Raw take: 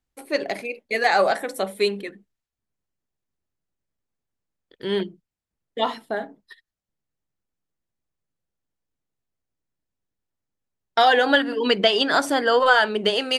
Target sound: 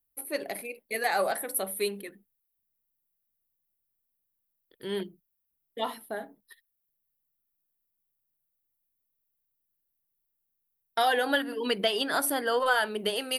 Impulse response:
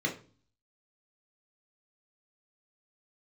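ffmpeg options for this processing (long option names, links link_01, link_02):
-af "aexciter=amount=12.8:drive=7:freq=9900,volume=-8.5dB"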